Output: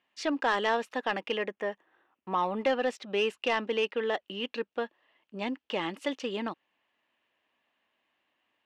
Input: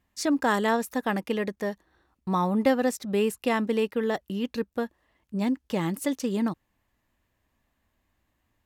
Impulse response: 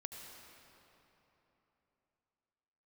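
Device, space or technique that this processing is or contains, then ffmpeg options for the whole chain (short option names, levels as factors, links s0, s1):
intercom: -filter_complex "[0:a]asettb=1/sr,asplit=3[s0][s1][s2];[s0]atrim=end=1.374[s3];[s1]atrim=start=1.37:end=2.38,asetpts=PTS-STARTPTS,afade=t=in:d=0.004:c=qsin,afade=t=out:st=1.006:d=0.004:c=qsin,equalizer=f=4300:t=o:w=0.54:g=-14.5[s4];[s2]atrim=start=2.376[s5];[s3][s4]acrossfade=d=0.004:c1=hsin:c2=qsin[s6];[s6][s5]acrossfade=d=0.004:c1=qsin:c2=hsin,highpass=400,lowpass=3500,equalizer=f=2900:t=o:w=0.59:g=9.5,asoftclip=type=tanh:threshold=0.133"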